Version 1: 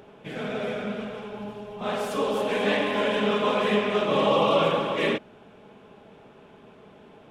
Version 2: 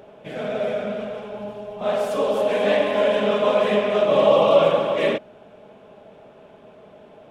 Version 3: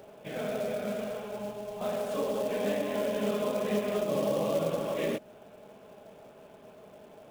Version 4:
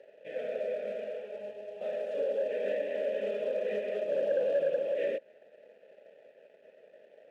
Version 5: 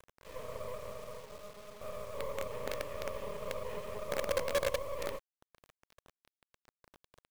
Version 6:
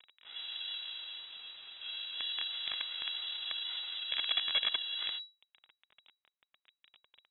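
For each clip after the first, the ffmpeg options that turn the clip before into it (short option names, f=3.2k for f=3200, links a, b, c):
-af "equalizer=f=610:w=3.1:g=10.5"
-filter_complex "[0:a]acrossover=split=380[a][b];[b]acompressor=threshold=-27dB:ratio=10[c];[a][c]amix=inputs=2:normalize=0,acrusher=bits=4:mode=log:mix=0:aa=0.000001,volume=-5dB"
-filter_complex "[0:a]aeval=exprs='sgn(val(0))*max(abs(val(0))-0.00126,0)':c=same,asplit=3[a][b][c];[a]bandpass=f=530:t=q:w=8,volume=0dB[d];[b]bandpass=f=1.84k:t=q:w=8,volume=-6dB[e];[c]bandpass=f=2.48k:t=q:w=8,volume=-9dB[f];[d][e][f]amix=inputs=3:normalize=0,asoftclip=type=tanh:threshold=-28dB,volume=7.5dB"
-af "acrusher=bits=5:dc=4:mix=0:aa=0.000001,volume=-4dB"
-af "lowpass=f=3.3k:t=q:w=0.5098,lowpass=f=3.3k:t=q:w=0.6013,lowpass=f=3.3k:t=q:w=0.9,lowpass=f=3.3k:t=q:w=2.563,afreqshift=-3900"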